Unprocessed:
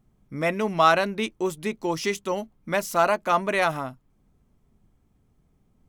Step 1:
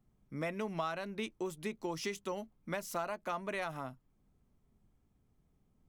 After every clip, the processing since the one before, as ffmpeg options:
-filter_complex "[0:a]acrossover=split=120[a][b];[b]acompressor=threshold=-26dB:ratio=6[c];[a][c]amix=inputs=2:normalize=0,volume=-8dB"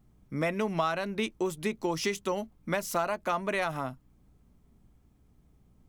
-af "aeval=exprs='val(0)+0.000224*(sin(2*PI*60*n/s)+sin(2*PI*2*60*n/s)/2+sin(2*PI*3*60*n/s)/3+sin(2*PI*4*60*n/s)/4+sin(2*PI*5*60*n/s)/5)':c=same,volume=8dB"

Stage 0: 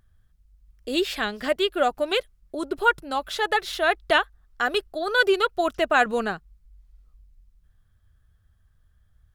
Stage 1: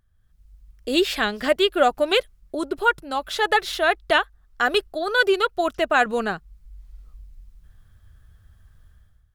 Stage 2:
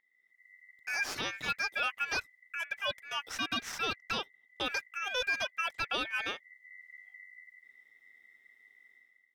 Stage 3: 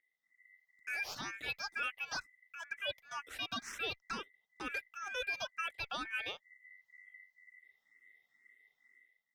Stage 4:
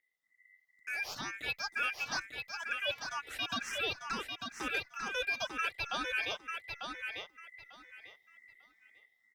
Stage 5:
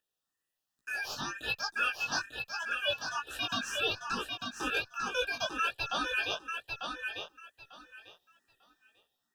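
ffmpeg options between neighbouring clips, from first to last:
-af "dynaudnorm=f=110:g=7:m=15dB,volume=-5dB"
-af "aeval=exprs='val(0)*sin(2*PI*2000*n/s)':c=same,alimiter=limit=-13.5dB:level=0:latency=1:release=32,volume=-8dB"
-filter_complex "[0:a]asplit=2[a][b];[b]afreqshift=2.1[c];[a][c]amix=inputs=2:normalize=1,volume=-3dB"
-filter_complex "[0:a]dynaudnorm=f=330:g=7:m=3.5dB,asplit=2[a][b];[b]aecho=0:1:896|1792|2688:0.531|0.106|0.0212[c];[a][c]amix=inputs=2:normalize=0"
-af "flanger=delay=16:depth=4.5:speed=1.2,asuperstop=centerf=2100:order=12:qfactor=3.4,volume=6.5dB"

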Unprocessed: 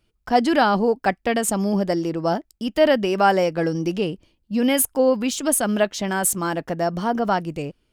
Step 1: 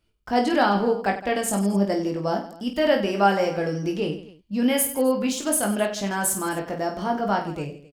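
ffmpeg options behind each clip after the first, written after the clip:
-af "aecho=1:1:20|50|95|162.5|263.8:0.631|0.398|0.251|0.158|0.1,volume=-4.5dB"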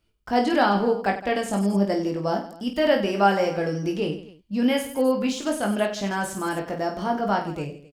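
-filter_complex "[0:a]acrossover=split=5600[a][b];[b]acompressor=threshold=-42dB:ratio=4:attack=1:release=60[c];[a][c]amix=inputs=2:normalize=0"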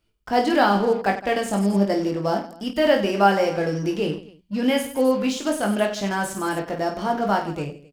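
-filter_complex "[0:a]bandreject=f=60:t=h:w=6,bandreject=f=120:t=h:w=6,bandreject=f=180:t=h:w=6,bandreject=f=240:t=h:w=6,asplit=2[a][b];[b]acrusher=bits=4:mix=0:aa=0.5,volume=-11.5dB[c];[a][c]amix=inputs=2:normalize=0"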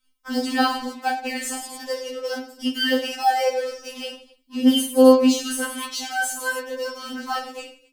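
-af "highshelf=f=2.7k:g=10.5,afftfilt=real='re*3.46*eq(mod(b,12),0)':imag='im*3.46*eq(mod(b,12),0)':win_size=2048:overlap=0.75,volume=-1dB"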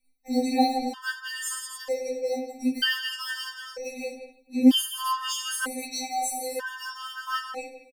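-filter_complex "[0:a]asplit=2[a][b];[b]adelay=170,highpass=300,lowpass=3.4k,asoftclip=type=hard:threshold=-11dB,volume=-9dB[c];[a][c]amix=inputs=2:normalize=0,afftfilt=real='re*gt(sin(2*PI*0.53*pts/sr)*(1-2*mod(floor(b*sr/1024/910),2)),0)':imag='im*gt(sin(2*PI*0.53*pts/sr)*(1-2*mod(floor(b*sr/1024/910),2)),0)':win_size=1024:overlap=0.75"

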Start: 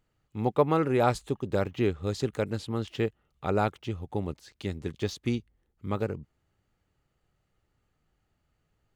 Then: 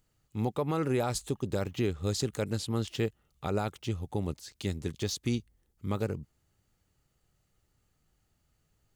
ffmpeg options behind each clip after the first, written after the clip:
-af "bass=f=250:g=3,treble=f=4k:g=11,alimiter=limit=-18.5dB:level=0:latency=1:release=98,volume=-1.5dB"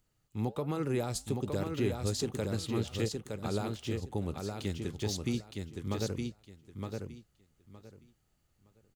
-filter_complex "[0:a]acrossover=split=470|3000[a][b][c];[b]acompressor=threshold=-35dB:ratio=6[d];[a][d][c]amix=inputs=3:normalize=0,flanger=delay=2.8:depth=8.2:regen=-84:speed=1.3:shape=triangular,aecho=1:1:915|1830|2745:0.596|0.119|0.0238,volume=2dB"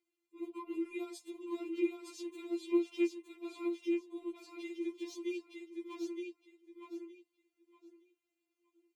-filter_complex "[0:a]asplit=3[a][b][c];[a]bandpass=f=300:t=q:w=8,volume=0dB[d];[b]bandpass=f=870:t=q:w=8,volume=-6dB[e];[c]bandpass=f=2.24k:t=q:w=8,volume=-9dB[f];[d][e][f]amix=inputs=3:normalize=0,aemphasis=mode=production:type=bsi,afftfilt=real='re*4*eq(mod(b,16),0)':imag='im*4*eq(mod(b,16),0)':win_size=2048:overlap=0.75,volume=11dB"

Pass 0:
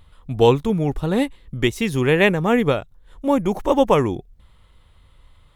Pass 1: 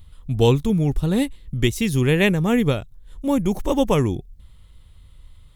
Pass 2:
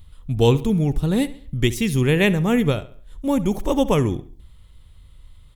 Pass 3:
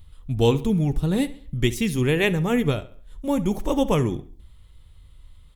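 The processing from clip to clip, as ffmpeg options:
-af "equalizer=f=940:w=0.32:g=-12.5,volume=6dB"
-filter_complex "[0:a]asplit=2[a][b];[b]adelay=69,lowpass=f=4.6k:p=1,volume=-16.5dB,asplit=2[c][d];[d]adelay=69,lowpass=f=4.6k:p=1,volume=0.41,asplit=2[e][f];[f]adelay=69,lowpass=f=4.6k:p=1,volume=0.41,asplit=2[g][h];[h]adelay=69,lowpass=f=4.6k:p=1,volume=0.41[i];[a][c][e][g][i]amix=inputs=5:normalize=0"
-af "flanger=delay=2.3:depth=4.1:regen=-72:speed=0.41:shape=sinusoidal,volume=2dB"

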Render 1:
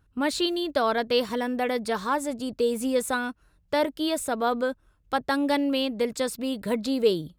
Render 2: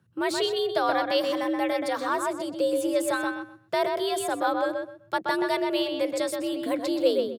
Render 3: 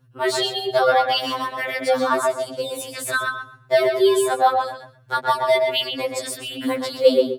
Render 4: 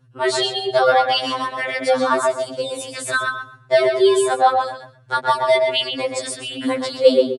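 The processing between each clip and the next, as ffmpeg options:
-filter_complex "[0:a]afreqshift=69,asplit=2[a][b];[b]adelay=127,lowpass=f=2.8k:p=1,volume=-3.5dB,asplit=2[c][d];[d]adelay=127,lowpass=f=2.8k:p=1,volume=0.23,asplit=2[e][f];[f]adelay=127,lowpass=f=2.8k:p=1,volume=0.23[g];[a][c][e][g]amix=inputs=4:normalize=0,volume=-1.5dB"
-af "lowshelf=f=110:g=6.5,afftfilt=real='re*2.45*eq(mod(b,6),0)':imag='im*2.45*eq(mod(b,6),0)':win_size=2048:overlap=0.75,volume=8.5dB"
-af "aresample=22050,aresample=44100,volume=2dB"

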